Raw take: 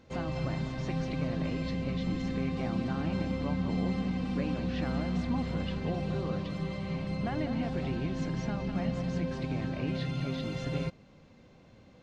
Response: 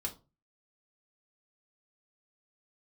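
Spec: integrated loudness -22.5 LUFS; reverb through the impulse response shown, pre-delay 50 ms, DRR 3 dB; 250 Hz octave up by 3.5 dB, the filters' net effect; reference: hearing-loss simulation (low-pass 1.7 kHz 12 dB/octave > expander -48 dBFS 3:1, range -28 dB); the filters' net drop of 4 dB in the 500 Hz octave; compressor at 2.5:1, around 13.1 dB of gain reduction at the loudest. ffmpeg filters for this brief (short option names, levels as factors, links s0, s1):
-filter_complex "[0:a]equalizer=f=250:t=o:g=6,equalizer=f=500:t=o:g=-6.5,acompressor=threshold=0.00562:ratio=2.5,asplit=2[s0][s1];[1:a]atrim=start_sample=2205,adelay=50[s2];[s1][s2]afir=irnorm=-1:irlink=0,volume=0.668[s3];[s0][s3]amix=inputs=2:normalize=0,lowpass=1700,agate=range=0.0398:threshold=0.00398:ratio=3,volume=7.94"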